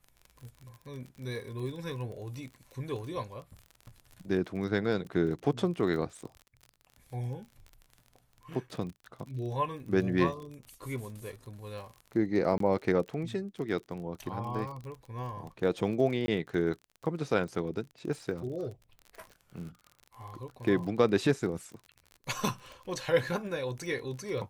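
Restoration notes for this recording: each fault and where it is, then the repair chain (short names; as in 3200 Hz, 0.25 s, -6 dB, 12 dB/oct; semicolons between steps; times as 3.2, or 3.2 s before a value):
crackle 32/s -39 dBFS
12.58–12.6 gap 23 ms
16.26–16.28 gap 20 ms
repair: de-click; interpolate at 12.58, 23 ms; interpolate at 16.26, 20 ms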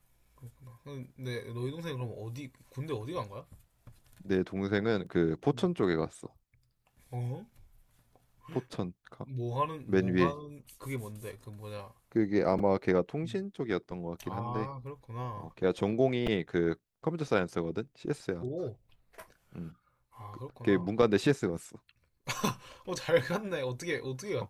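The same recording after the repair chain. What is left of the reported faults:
none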